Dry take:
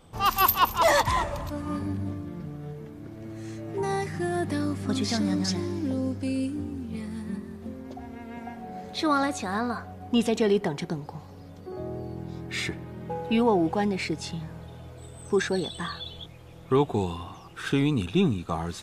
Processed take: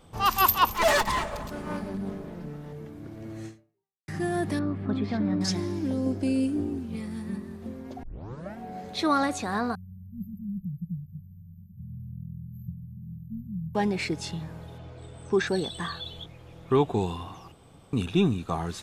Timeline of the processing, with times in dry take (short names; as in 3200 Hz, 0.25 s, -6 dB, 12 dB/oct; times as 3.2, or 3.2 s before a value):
0.73–2.73 minimum comb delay 4.7 ms
3.46–4.08 fade out exponential
4.59–5.41 air absorption 480 m
6.06–6.79 small resonant body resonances 360/640 Hz, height 10 dB, ringing for 30 ms
8.03 tape start 0.54 s
9.75–13.75 brick-wall FIR band-stop 210–12000 Hz
14.78–15.47 LPF 5500 Hz
16.23–17.01 high shelf 6900 Hz -> 12000 Hz -7.5 dB
17.52–17.93 room tone